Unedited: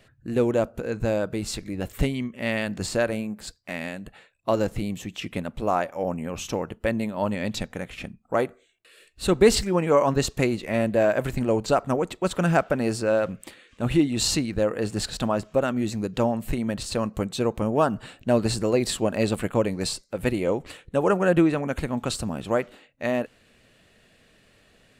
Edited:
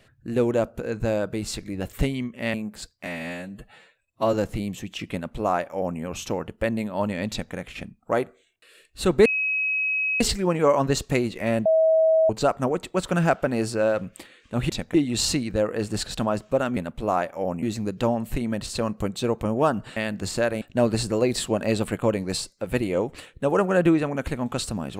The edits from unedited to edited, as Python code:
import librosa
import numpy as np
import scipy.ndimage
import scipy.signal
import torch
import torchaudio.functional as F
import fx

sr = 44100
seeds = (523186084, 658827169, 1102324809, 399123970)

y = fx.edit(x, sr, fx.move(start_s=2.54, length_s=0.65, to_s=18.13),
    fx.stretch_span(start_s=3.71, length_s=0.85, factor=1.5),
    fx.duplicate(start_s=5.36, length_s=0.86, to_s=15.79),
    fx.duplicate(start_s=7.52, length_s=0.25, to_s=13.97),
    fx.insert_tone(at_s=9.48, length_s=0.95, hz=2550.0, db=-21.5),
    fx.bleep(start_s=10.93, length_s=0.64, hz=642.0, db=-15.0), tone=tone)